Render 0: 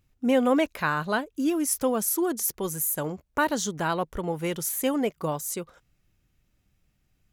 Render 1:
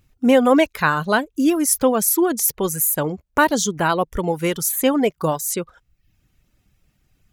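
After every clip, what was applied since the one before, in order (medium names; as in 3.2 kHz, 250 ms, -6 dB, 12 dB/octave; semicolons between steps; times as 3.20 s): reverb removal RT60 0.62 s; trim +8.5 dB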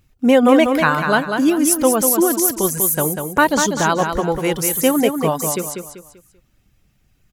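feedback delay 194 ms, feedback 35%, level -6 dB; trim +1.5 dB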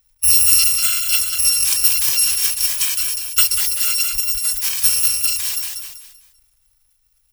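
bit-reversed sample order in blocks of 256 samples; transient shaper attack +4 dB, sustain +8 dB; amplifier tone stack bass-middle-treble 10-0-10; trim -2 dB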